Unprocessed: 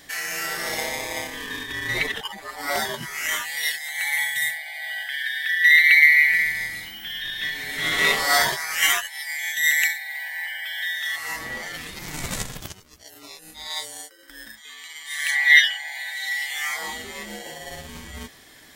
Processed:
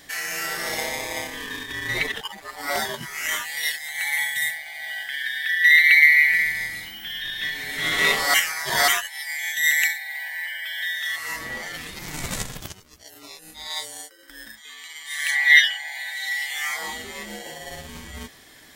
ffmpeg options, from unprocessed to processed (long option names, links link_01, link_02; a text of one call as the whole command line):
ffmpeg -i in.wav -filter_complex "[0:a]asettb=1/sr,asplit=3[link_01][link_02][link_03];[link_01]atrim=end=1.494[link_04];[link_02]atrim=start=1.49:end=5.39,asetpts=PTS-STARTPTS,afade=type=in:duration=0.004:curve=qsin,afade=type=out:start_time=3.896:duration=0.004:curve=qsin,aeval=exprs='sgn(val(0))*max(abs(val(0))-0.00376,0)':channel_layout=same[link_05];[link_03]atrim=start=5.386[link_06];[link_04][link_05]acrossfade=duration=0.004:curve1=hsin:curve2=qsin[link_07];[link_07][link_06]acrossfade=duration=0.004:curve1=qsin:curve2=hsin,asettb=1/sr,asplit=3[link_08][link_09][link_10];[link_08]atrim=end=10.354[link_11];[link_09]atrim=start=10.35:end=11.49,asetpts=PTS-STARTPTS,afade=type=in:duration=0.004:curve=qsin,afade=type=out:start_time=1.136:duration=0.004:curve=qsin,bandreject=frequency=800:width=7.5[link_12];[link_10]atrim=start=11.486[link_13];[link_11][link_12]acrossfade=duration=0.004:curve1=hsin:curve2=qsin[link_14];[link_14][link_13]acrossfade=duration=0.004:curve1=qsin:curve2=hsin,asplit=3[link_15][link_16][link_17];[link_15]atrim=end=8.342[link_18];[link_16]atrim=start=8.338:end=8.882,asetpts=PTS-STARTPTS,areverse[link_19];[link_17]atrim=start=8.878[link_20];[link_18][link_19]acrossfade=duration=0.004:curve1=hsin:curve2=hsin[link_21];[link_21][link_20]acrossfade=duration=0.004:curve1=hsin:curve2=hsin" out.wav